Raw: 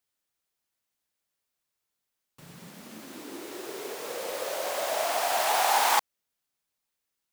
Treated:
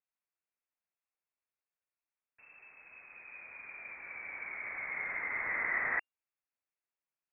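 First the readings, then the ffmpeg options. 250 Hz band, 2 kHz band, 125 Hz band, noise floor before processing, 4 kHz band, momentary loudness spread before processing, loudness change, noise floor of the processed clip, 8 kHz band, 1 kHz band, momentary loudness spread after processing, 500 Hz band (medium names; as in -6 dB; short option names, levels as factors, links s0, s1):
-15.0 dB, 0.0 dB, no reading, -84 dBFS, under -40 dB, 21 LU, -9.0 dB, under -85 dBFS, under -40 dB, -18.5 dB, 21 LU, -21.0 dB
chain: -af "lowpass=f=2400:t=q:w=0.5098,lowpass=f=2400:t=q:w=0.6013,lowpass=f=2400:t=q:w=0.9,lowpass=f=2400:t=q:w=2.563,afreqshift=-2800,volume=0.355"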